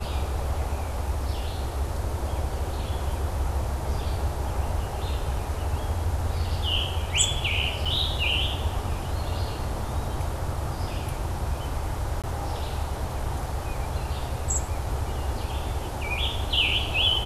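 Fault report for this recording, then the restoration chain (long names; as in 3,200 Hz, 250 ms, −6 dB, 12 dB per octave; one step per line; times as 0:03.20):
0:07.85–0:07.86: drop-out 5.2 ms
0:12.22–0:12.24: drop-out 17 ms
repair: repair the gap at 0:07.85, 5.2 ms
repair the gap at 0:12.22, 17 ms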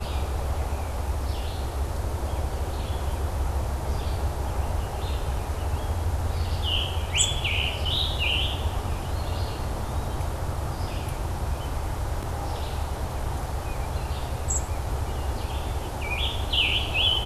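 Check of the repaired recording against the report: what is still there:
none of them is left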